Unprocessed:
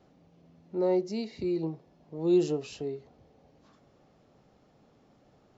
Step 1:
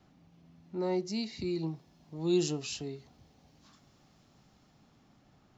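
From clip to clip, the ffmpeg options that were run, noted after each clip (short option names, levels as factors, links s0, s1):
-filter_complex "[0:a]equalizer=f=490:t=o:w=1:g=-11.5,acrossover=split=450|3600[s0][s1][s2];[s2]dynaudnorm=f=210:g=11:m=2.51[s3];[s0][s1][s3]amix=inputs=3:normalize=0,volume=1.19"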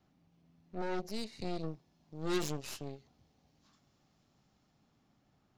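-af "aeval=exprs='0.133*(cos(1*acos(clip(val(0)/0.133,-1,1)))-cos(1*PI/2))+0.0106*(cos(3*acos(clip(val(0)/0.133,-1,1)))-cos(3*PI/2))+0.0119*(cos(6*acos(clip(val(0)/0.133,-1,1)))-cos(6*PI/2))+0.0335*(cos(8*acos(clip(val(0)/0.133,-1,1)))-cos(8*PI/2))':c=same,volume=0.501"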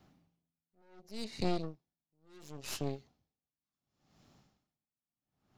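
-filter_complex "[0:a]asplit=2[s0][s1];[s1]asoftclip=type=hard:threshold=0.0316,volume=0.376[s2];[s0][s2]amix=inputs=2:normalize=0,aeval=exprs='val(0)*pow(10,-39*(0.5-0.5*cos(2*PI*0.7*n/s))/20)':c=same,volume=1.68"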